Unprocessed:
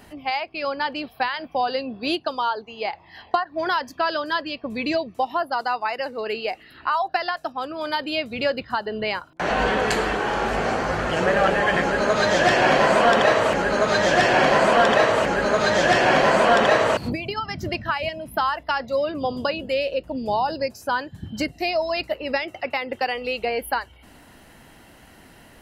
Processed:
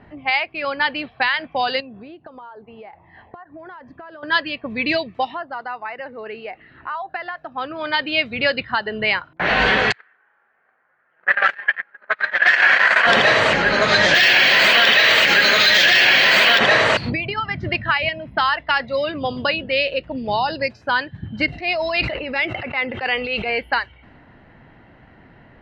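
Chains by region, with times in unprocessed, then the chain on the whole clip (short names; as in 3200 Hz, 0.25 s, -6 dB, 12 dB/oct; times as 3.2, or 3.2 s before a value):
1.8–4.23 high shelf 2200 Hz -9 dB + compressor 10:1, threshold -36 dBFS + LPF 7600 Hz
5.29–7.52 high shelf 4000 Hz -6.5 dB + compressor 1.5:1, threshold -39 dBFS
9.92–13.07 gate -17 dBFS, range -46 dB + HPF 650 Hz 6 dB/oct + bell 1600 Hz +14.5 dB 1.2 oct
14.14–16.59 weighting filter D + careless resampling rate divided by 2×, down filtered, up zero stuff
21.46–23.5 transient shaper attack -8 dB, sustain +1 dB + notch 1900 Hz, Q 15 + sustainer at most 25 dB/s
whole clip: low-pass opened by the level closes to 980 Hz, open at -13.5 dBFS; graphic EQ 125/2000/4000 Hz +6/+10/+10 dB; limiter -4.5 dBFS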